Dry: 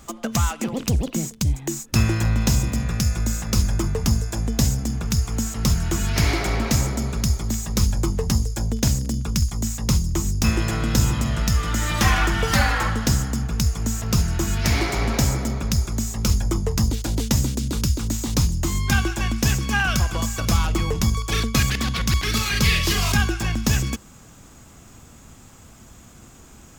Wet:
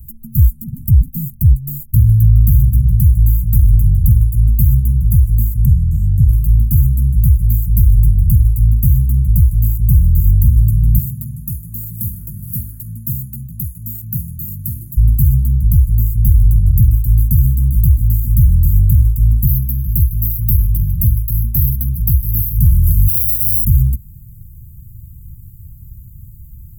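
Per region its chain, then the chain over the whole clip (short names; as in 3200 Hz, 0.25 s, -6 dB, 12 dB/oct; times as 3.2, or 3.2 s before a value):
5.65–6.29 HPF 73 Hz 6 dB/oct + air absorption 65 m
10.98–14.97 HPF 240 Hz + notch 1300 Hz, Q 13
19.47–22.57 overdrive pedal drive 13 dB, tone 4500 Hz, clips at -6.5 dBFS + EQ curve 300 Hz 0 dB, 620 Hz +8 dB, 920 Hz -19 dB, 3300 Hz -29 dB, 6600 Hz -29 dB, 12000 Hz +8 dB
23.08–23.65 HPF 190 Hz 6 dB/oct + careless resampling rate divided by 8×, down filtered, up zero stuff
whole clip: inverse Chebyshev band-stop 420–5200 Hz, stop band 60 dB; maximiser +15.5 dB; gain -1 dB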